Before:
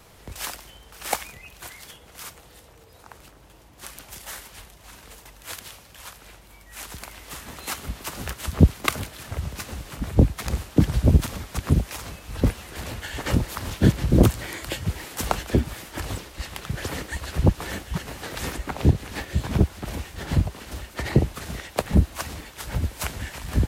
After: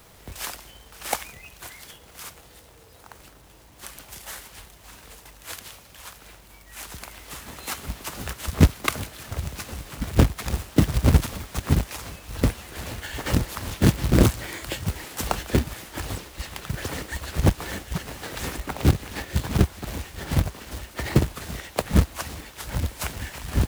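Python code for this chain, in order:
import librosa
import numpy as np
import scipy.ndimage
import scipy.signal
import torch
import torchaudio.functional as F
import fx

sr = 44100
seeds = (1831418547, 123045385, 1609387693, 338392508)

y = fx.quant_companded(x, sr, bits=4)
y = y * librosa.db_to_amplitude(-1.0)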